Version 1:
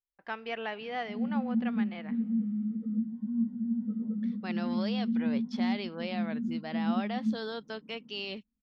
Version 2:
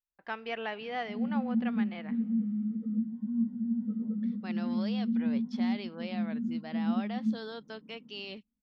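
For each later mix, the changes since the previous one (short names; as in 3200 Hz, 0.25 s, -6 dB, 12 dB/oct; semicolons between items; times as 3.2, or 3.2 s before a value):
second voice -4.0 dB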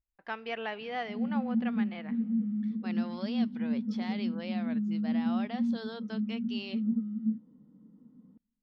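second voice: entry -1.60 s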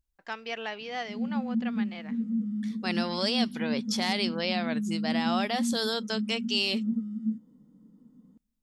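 first voice: send -10.0 dB; second voice +9.0 dB; master: remove air absorption 280 m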